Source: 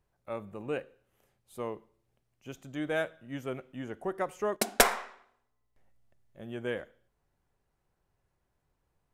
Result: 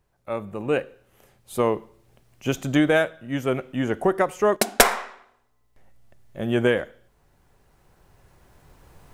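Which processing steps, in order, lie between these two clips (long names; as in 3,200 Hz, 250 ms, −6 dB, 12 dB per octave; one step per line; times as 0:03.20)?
camcorder AGC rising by 6.3 dB per second
level +6.5 dB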